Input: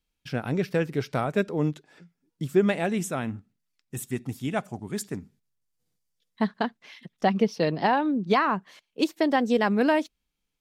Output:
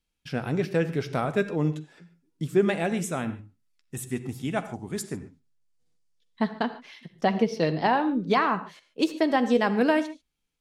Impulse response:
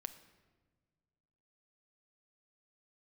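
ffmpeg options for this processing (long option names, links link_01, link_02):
-filter_complex "[0:a]asettb=1/sr,asplit=3[link_01][link_02][link_03];[link_01]atrim=end=5.134[link_04];[link_02]atrim=start=5.13:end=6.46,asetpts=PTS-STARTPTS,afade=type=in:duration=0.004:curve=qsin,afade=type=out:start_time=1.326:duration=0.004:curve=qsin,lowpass=8900[link_05];[link_03]atrim=start=6.456[link_06];[link_04][link_05]acrossfade=duration=0.004:curve1=hsin:curve2=qsin[link_07];[link_07][link_06]acrossfade=duration=0.004:curve1=qsin:curve2=hsin[link_08];[1:a]atrim=start_sample=2205,atrim=end_sample=3528,asetrate=22932,aresample=44100[link_09];[link_08][link_09]afir=irnorm=-1:irlink=0"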